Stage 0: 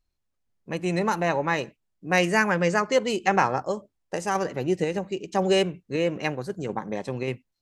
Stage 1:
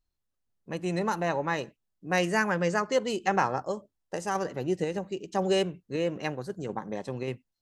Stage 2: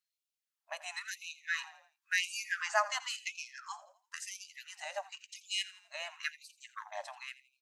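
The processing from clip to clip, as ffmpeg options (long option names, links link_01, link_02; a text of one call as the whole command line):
ffmpeg -i in.wav -af "equalizer=frequency=2300:width_type=o:width=0.31:gain=-5.5,volume=-4dB" out.wav
ffmpeg -i in.wav -filter_complex "[0:a]asplit=5[link_01][link_02][link_03][link_04][link_05];[link_02]adelay=84,afreqshift=-31,volume=-17dB[link_06];[link_03]adelay=168,afreqshift=-62,volume=-24.3dB[link_07];[link_04]adelay=252,afreqshift=-93,volume=-31.7dB[link_08];[link_05]adelay=336,afreqshift=-124,volume=-39dB[link_09];[link_01][link_06][link_07][link_08][link_09]amix=inputs=5:normalize=0,afftfilt=real='re*gte(b*sr/1024,550*pow(2300/550,0.5+0.5*sin(2*PI*0.96*pts/sr)))':imag='im*gte(b*sr/1024,550*pow(2300/550,0.5+0.5*sin(2*PI*0.96*pts/sr)))':win_size=1024:overlap=0.75" out.wav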